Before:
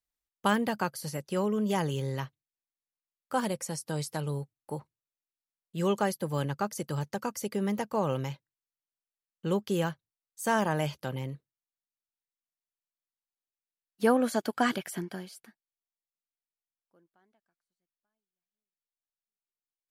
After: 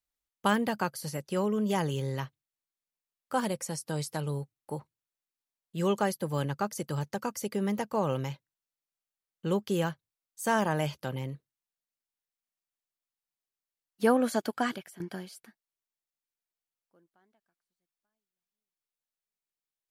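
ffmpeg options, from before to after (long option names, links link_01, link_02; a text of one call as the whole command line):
ffmpeg -i in.wav -filter_complex "[0:a]asplit=2[link_01][link_02];[link_01]atrim=end=15,asetpts=PTS-STARTPTS,afade=type=out:start_time=14.43:duration=0.57:silence=0.141254[link_03];[link_02]atrim=start=15,asetpts=PTS-STARTPTS,afade=type=in:duration=0.004:curve=hsin:silence=0.141254[link_04];[link_03][link_04]concat=n=2:v=0:a=1" out.wav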